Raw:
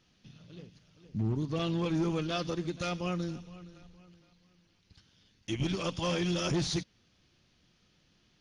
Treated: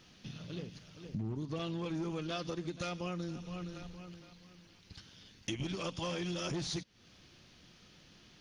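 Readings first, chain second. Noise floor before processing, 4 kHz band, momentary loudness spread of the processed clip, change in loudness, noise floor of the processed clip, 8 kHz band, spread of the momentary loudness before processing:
-69 dBFS, -4.5 dB, 22 LU, -7.0 dB, -62 dBFS, -4.0 dB, 20 LU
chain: bass shelf 130 Hz -4 dB; compression 5:1, threshold -46 dBFS, peak gain reduction 16.5 dB; trim +9 dB

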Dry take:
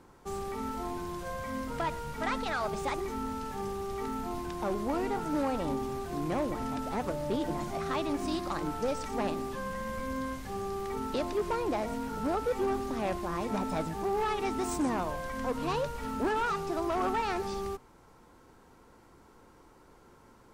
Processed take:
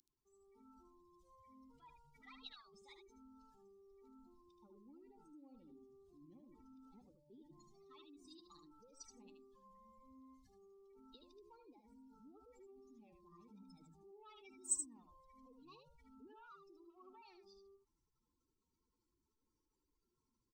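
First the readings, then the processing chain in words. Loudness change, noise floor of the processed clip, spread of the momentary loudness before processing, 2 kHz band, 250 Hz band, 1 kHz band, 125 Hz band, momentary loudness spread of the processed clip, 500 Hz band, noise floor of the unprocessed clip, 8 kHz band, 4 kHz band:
-19.0 dB, under -85 dBFS, 6 LU, -31.0 dB, -28.0 dB, -32.5 dB, -32.5 dB, 11 LU, -31.5 dB, -58 dBFS, -2.0 dB, -20.0 dB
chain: spectral contrast enhancement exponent 2.9; inverse Chebyshev high-pass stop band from 1.7 kHz, stop band 50 dB; level rider gain up to 7 dB; delay 76 ms -7 dB; trim +15.5 dB

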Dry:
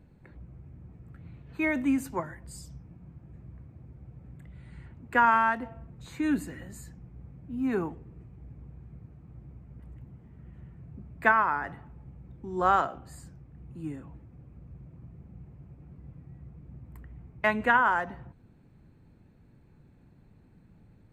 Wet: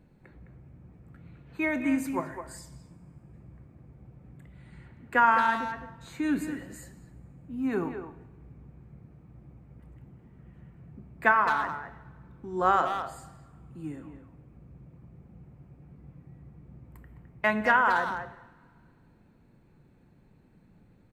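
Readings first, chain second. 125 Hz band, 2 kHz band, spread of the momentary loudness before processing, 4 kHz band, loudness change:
-2.5 dB, +0.5 dB, 22 LU, +2.5 dB, 0.0 dB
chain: peaking EQ 79 Hz -7.5 dB 1.3 oct; speakerphone echo 210 ms, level -8 dB; two-slope reverb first 0.88 s, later 2.4 s, from -17 dB, DRR 11.5 dB

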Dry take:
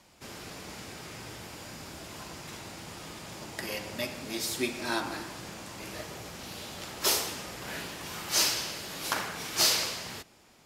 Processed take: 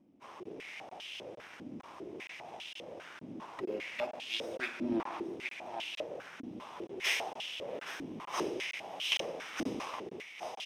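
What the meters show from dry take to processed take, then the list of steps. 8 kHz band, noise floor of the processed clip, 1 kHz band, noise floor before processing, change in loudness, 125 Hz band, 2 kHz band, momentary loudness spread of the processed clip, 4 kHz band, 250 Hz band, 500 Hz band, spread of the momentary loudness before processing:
-17.0 dB, -52 dBFS, -4.0 dB, -60 dBFS, -7.0 dB, -10.5 dB, -3.0 dB, 14 LU, -7.5 dB, -0.5 dB, -0.5 dB, 17 LU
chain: comb filter that takes the minimum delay 0.33 ms; in parallel at -10 dB: bit crusher 7-bit; on the sum: delay 819 ms -10 dB; crackling interface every 0.46 s, samples 1024, zero, from 0.43 s; step-sequenced band-pass 5 Hz 270–3000 Hz; trim +7.5 dB

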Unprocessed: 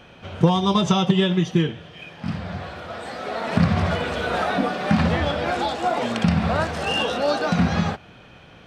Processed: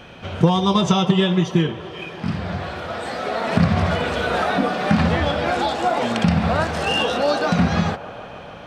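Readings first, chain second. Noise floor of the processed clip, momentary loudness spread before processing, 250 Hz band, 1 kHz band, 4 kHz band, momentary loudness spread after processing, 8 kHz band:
-37 dBFS, 14 LU, +2.0 dB, +2.5 dB, +2.0 dB, 11 LU, +2.5 dB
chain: in parallel at -1 dB: compression, threshold -29 dBFS, peak gain reduction 17 dB; on the sum: feedback echo behind a band-pass 149 ms, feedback 84%, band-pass 720 Hz, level -15 dB

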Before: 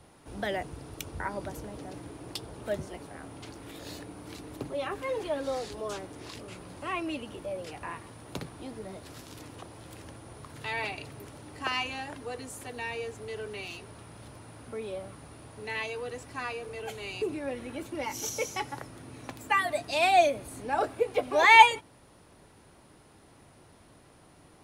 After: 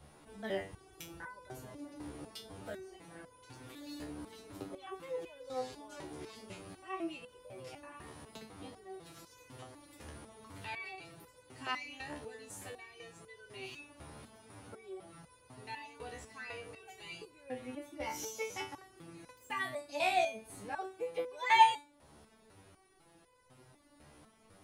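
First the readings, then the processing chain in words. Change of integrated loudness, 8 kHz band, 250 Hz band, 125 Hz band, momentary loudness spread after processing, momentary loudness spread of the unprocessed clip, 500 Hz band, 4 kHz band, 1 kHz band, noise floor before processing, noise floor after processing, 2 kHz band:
-9.5 dB, -8.0 dB, -7.5 dB, -10.0 dB, 15 LU, 19 LU, -10.0 dB, -9.0 dB, -7.5 dB, -57 dBFS, -64 dBFS, -11.5 dB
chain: in parallel at 0 dB: compression, threshold -41 dBFS, peak gain reduction 28 dB; on the sum: vibrato 7.8 Hz 6 cents; resonator arpeggio 4 Hz 74–500 Hz

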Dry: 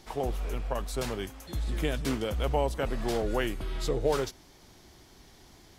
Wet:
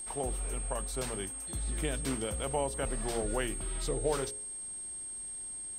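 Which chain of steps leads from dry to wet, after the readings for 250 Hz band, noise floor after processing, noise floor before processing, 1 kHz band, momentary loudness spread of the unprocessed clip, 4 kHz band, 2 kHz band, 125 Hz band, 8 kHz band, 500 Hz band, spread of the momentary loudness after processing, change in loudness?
-4.5 dB, -42 dBFS, -56 dBFS, -4.0 dB, 7 LU, -4.0 dB, -4.0 dB, -5.0 dB, +11.5 dB, -4.5 dB, 6 LU, -3.0 dB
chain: de-hum 59.3 Hz, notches 9; whistle 8.5 kHz -35 dBFS; trim -4 dB

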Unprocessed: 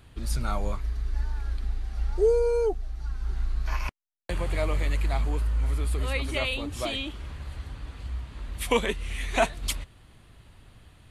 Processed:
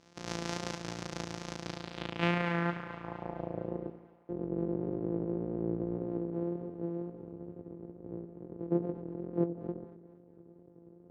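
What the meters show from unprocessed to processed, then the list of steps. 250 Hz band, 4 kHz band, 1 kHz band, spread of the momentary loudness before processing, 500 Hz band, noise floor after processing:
+3.5 dB, -10.5 dB, -7.0 dB, 13 LU, -8.5 dB, -59 dBFS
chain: sorted samples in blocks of 256 samples; high-pass 200 Hz 12 dB/octave; reverse; upward compressor, threshold -42 dBFS; reverse; wow and flutter 24 cents; low-pass sweep 5.9 kHz -> 400 Hz, 1.57–3.87 s; two-band feedback delay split 760 Hz, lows 87 ms, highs 232 ms, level -12 dB; trim -7 dB

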